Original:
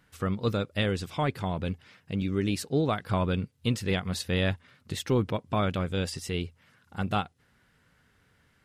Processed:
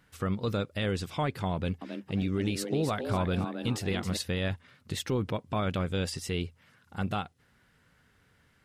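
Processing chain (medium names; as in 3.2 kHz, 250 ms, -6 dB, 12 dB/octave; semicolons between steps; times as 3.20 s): peak limiter -21 dBFS, peak gain reduction 6 dB; 1.54–4.17 s: frequency-shifting echo 271 ms, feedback 37%, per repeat +110 Hz, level -8 dB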